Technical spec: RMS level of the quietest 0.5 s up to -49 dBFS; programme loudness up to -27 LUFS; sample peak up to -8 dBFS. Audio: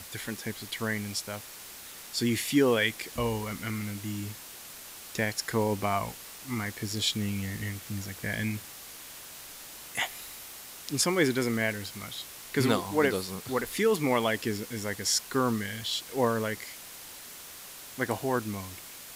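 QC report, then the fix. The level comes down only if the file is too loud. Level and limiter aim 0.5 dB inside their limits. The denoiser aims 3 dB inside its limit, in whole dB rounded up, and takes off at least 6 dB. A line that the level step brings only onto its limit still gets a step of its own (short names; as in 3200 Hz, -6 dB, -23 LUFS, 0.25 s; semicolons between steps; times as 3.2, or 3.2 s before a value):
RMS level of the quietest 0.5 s -46 dBFS: fail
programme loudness -30.0 LUFS: OK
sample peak -11.5 dBFS: OK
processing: denoiser 6 dB, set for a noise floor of -46 dBFS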